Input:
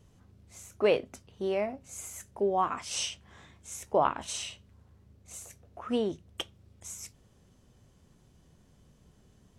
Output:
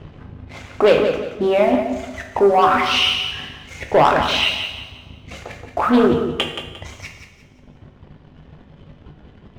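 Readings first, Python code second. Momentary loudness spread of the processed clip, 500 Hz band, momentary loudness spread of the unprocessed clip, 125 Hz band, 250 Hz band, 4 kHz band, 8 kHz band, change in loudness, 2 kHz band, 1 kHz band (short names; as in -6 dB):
21 LU, +14.0 dB, 20 LU, +16.0 dB, +16.5 dB, +19.0 dB, -0.5 dB, +15.0 dB, +19.5 dB, +15.0 dB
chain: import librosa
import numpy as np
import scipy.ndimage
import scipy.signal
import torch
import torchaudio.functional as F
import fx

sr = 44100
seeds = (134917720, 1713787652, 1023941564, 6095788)

p1 = scipy.signal.sosfilt(scipy.signal.butter(4, 3200.0, 'lowpass', fs=sr, output='sos'), x)
p2 = fx.dereverb_blind(p1, sr, rt60_s=1.9)
p3 = fx.hum_notches(p2, sr, base_hz=60, count=4)
p4 = fx.over_compress(p3, sr, threshold_db=-42.0, ratio=-1.0)
p5 = p3 + (p4 * 10.0 ** (-1.0 / 20.0))
p6 = fx.leveller(p5, sr, passes=2)
p7 = fx.doubler(p6, sr, ms=20.0, db=-13.0)
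p8 = fx.echo_feedback(p7, sr, ms=176, feedback_pct=32, wet_db=-8.5)
p9 = fx.rev_double_slope(p8, sr, seeds[0], early_s=0.73, late_s=2.2, knee_db=-17, drr_db=3.5)
p10 = fx.doppler_dist(p9, sr, depth_ms=0.23)
y = p10 * 10.0 ** (6.5 / 20.0)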